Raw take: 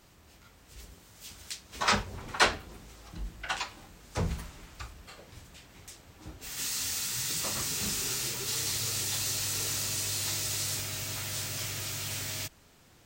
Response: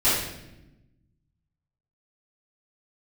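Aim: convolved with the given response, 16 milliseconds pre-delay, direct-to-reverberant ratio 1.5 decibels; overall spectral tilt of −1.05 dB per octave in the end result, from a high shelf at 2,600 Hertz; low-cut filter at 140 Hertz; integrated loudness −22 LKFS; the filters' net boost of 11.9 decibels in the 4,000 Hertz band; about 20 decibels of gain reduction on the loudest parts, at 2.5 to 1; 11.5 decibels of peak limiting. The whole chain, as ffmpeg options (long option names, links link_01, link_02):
-filter_complex "[0:a]highpass=140,highshelf=frequency=2600:gain=7.5,equalizer=frequency=4000:width_type=o:gain=8,acompressor=threshold=-44dB:ratio=2.5,alimiter=level_in=9dB:limit=-24dB:level=0:latency=1,volume=-9dB,asplit=2[link_01][link_02];[1:a]atrim=start_sample=2205,adelay=16[link_03];[link_02][link_03]afir=irnorm=-1:irlink=0,volume=-18dB[link_04];[link_01][link_04]amix=inputs=2:normalize=0,volume=18dB"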